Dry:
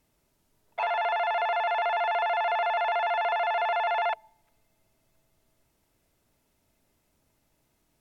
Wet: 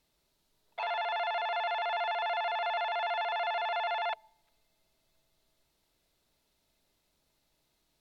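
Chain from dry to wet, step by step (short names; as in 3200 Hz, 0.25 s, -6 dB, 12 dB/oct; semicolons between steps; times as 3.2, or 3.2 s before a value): fifteen-band EQ 100 Hz -8 dB, 250 Hz -4 dB, 4000 Hz +10 dB; limiter -22 dBFS, peak gain reduction 5 dB; gain -4.5 dB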